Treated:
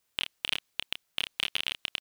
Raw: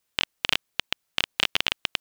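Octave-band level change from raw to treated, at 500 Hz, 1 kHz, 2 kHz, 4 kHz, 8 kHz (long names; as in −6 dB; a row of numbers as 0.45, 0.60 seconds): −10.0, −10.5, −7.0, −5.5, −6.0 decibels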